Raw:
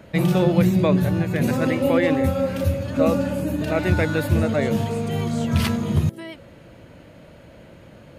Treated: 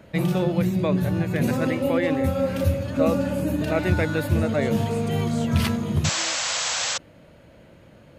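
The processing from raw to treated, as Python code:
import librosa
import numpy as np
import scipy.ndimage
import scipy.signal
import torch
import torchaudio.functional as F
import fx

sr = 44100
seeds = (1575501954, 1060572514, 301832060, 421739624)

y = fx.spec_paint(x, sr, seeds[0], shape='noise', start_s=6.04, length_s=0.94, low_hz=470.0, high_hz=8000.0, level_db=-21.0)
y = fx.rider(y, sr, range_db=3, speed_s=0.5)
y = F.gain(torch.from_numpy(y), -2.5).numpy()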